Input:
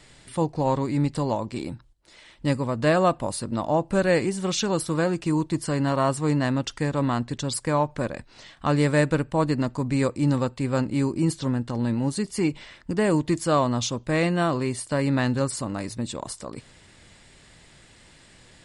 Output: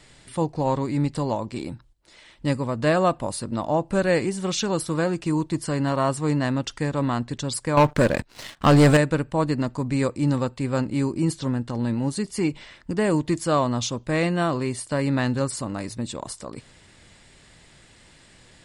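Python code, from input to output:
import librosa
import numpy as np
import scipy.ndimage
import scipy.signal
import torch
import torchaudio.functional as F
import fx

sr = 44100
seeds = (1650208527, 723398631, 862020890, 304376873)

y = fx.leveller(x, sr, passes=3, at=(7.77, 8.97))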